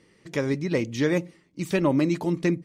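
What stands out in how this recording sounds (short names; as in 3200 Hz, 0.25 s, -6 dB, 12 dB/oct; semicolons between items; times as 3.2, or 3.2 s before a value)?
noise floor -62 dBFS; spectral tilt -6.5 dB/oct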